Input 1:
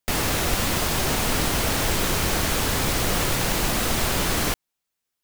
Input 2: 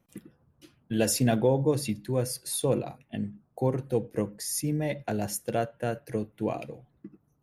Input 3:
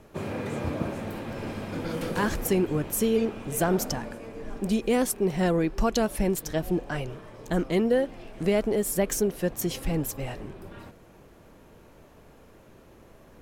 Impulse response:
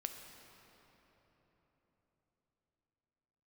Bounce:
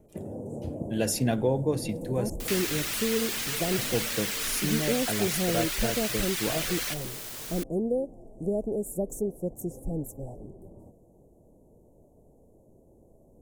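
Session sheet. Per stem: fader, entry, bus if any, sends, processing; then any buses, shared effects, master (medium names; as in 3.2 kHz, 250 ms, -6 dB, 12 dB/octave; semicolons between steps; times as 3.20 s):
-3.5 dB, 2.40 s, no send, reverb removal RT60 0.68 s; Chebyshev high-pass 1.9 kHz, order 2; word length cut 6-bit, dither triangular
-2.0 dB, 0.00 s, muted 2.30–3.78 s, no send, none
-4.5 dB, 0.00 s, no send, inverse Chebyshev band-stop 1.4–4.2 kHz, stop band 50 dB; treble shelf 12 kHz -11 dB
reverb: none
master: none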